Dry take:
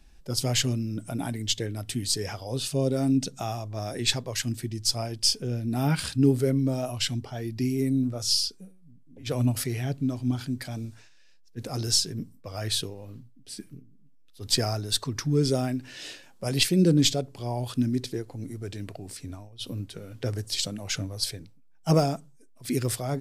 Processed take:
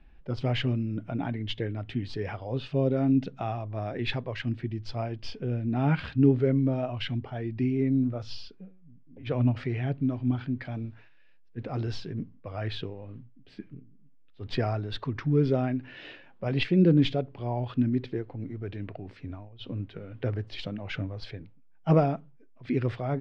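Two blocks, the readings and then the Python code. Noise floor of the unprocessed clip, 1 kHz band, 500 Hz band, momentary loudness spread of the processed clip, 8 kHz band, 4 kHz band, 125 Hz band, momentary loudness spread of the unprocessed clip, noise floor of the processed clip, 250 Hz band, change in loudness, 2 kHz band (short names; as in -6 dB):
-53 dBFS, 0.0 dB, 0.0 dB, 18 LU, under -30 dB, -11.5 dB, 0.0 dB, 15 LU, -53 dBFS, 0.0 dB, -2.0 dB, -1.0 dB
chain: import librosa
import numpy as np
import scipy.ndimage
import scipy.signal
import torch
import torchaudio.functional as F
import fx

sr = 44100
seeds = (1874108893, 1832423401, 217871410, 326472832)

y = scipy.signal.sosfilt(scipy.signal.butter(4, 2800.0, 'lowpass', fs=sr, output='sos'), x)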